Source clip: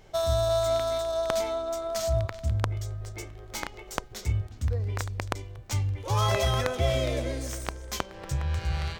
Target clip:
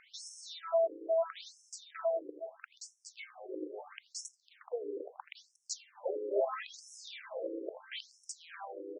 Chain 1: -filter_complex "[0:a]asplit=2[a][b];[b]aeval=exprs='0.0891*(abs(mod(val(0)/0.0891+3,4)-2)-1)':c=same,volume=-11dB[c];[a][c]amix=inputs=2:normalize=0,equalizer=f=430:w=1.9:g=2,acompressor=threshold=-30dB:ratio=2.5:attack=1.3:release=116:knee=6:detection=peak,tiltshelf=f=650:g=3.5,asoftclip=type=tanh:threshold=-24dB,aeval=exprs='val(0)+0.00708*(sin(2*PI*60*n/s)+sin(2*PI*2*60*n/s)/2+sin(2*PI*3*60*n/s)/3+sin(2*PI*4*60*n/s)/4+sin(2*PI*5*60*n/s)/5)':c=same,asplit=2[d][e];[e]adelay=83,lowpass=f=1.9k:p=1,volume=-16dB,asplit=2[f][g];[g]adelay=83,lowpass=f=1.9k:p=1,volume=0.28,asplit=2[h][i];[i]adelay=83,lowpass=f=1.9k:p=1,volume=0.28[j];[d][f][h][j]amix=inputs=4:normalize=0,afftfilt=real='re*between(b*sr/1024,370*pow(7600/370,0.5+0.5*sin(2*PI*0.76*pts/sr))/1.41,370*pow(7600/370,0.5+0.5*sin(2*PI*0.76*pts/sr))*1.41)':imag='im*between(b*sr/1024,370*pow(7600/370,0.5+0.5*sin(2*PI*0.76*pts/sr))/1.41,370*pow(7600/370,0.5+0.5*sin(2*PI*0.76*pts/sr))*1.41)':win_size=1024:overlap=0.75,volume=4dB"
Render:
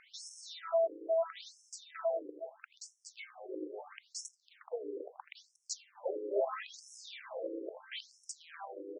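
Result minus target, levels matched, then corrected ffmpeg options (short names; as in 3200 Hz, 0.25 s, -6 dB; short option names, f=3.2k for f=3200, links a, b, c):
soft clip: distortion +11 dB
-filter_complex "[0:a]asplit=2[a][b];[b]aeval=exprs='0.0891*(abs(mod(val(0)/0.0891+3,4)-2)-1)':c=same,volume=-11dB[c];[a][c]amix=inputs=2:normalize=0,equalizer=f=430:w=1.9:g=2,acompressor=threshold=-30dB:ratio=2.5:attack=1.3:release=116:knee=6:detection=peak,tiltshelf=f=650:g=3.5,asoftclip=type=tanh:threshold=-17.5dB,aeval=exprs='val(0)+0.00708*(sin(2*PI*60*n/s)+sin(2*PI*2*60*n/s)/2+sin(2*PI*3*60*n/s)/3+sin(2*PI*4*60*n/s)/4+sin(2*PI*5*60*n/s)/5)':c=same,asplit=2[d][e];[e]adelay=83,lowpass=f=1.9k:p=1,volume=-16dB,asplit=2[f][g];[g]adelay=83,lowpass=f=1.9k:p=1,volume=0.28,asplit=2[h][i];[i]adelay=83,lowpass=f=1.9k:p=1,volume=0.28[j];[d][f][h][j]amix=inputs=4:normalize=0,afftfilt=real='re*between(b*sr/1024,370*pow(7600/370,0.5+0.5*sin(2*PI*0.76*pts/sr))/1.41,370*pow(7600/370,0.5+0.5*sin(2*PI*0.76*pts/sr))*1.41)':imag='im*between(b*sr/1024,370*pow(7600/370,0.5+0.5*sin(2*PI*0.76*pts/sr))/1.41,370*pow(7600/370,0.5+0.5*sin(2*PI*0.76*pts/sr))*1.41)':win_size=1024:overlap=0.75,volume=4dB"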